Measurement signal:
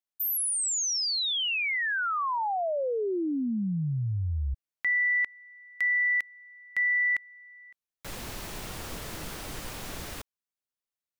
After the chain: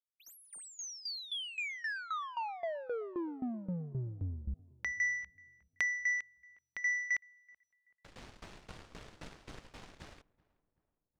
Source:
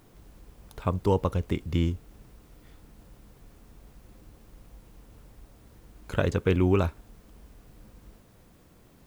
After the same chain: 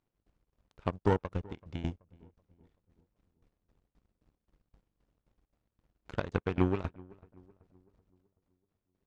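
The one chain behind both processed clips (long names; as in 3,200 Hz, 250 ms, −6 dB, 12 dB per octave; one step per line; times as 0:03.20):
in parallel at +2 dB: downward compressor, threshold −40 dBFS
on the sum: shaped tremolo saw down 3.8 Hz, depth 65%
power curve on the samples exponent 2
high-frequency loss of the air 99 metres
feedback echo with a low-pass in the loop 380 ms, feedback 47%, low-pass 1,500 Hz, level −23 dB
level +1.5 dB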